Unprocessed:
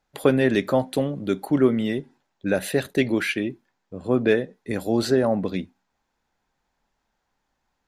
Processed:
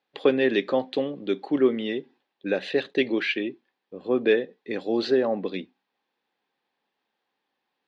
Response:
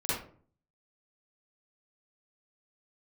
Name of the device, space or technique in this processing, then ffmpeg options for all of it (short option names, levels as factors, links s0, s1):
phone earpiece: -af "highpass=380,equalizer=f=640:t=q:w=4:g=-9,equalizer=f=940:t=q:w=4:g=-7,equalizer=f=1400:t=q:w=4:g=-10,equalizer=f=2100:t=q:w=4:g=-4,lowpass=f=4000:w=0.5412,lowpass=f=4000:w=1.3066,volume=1.41"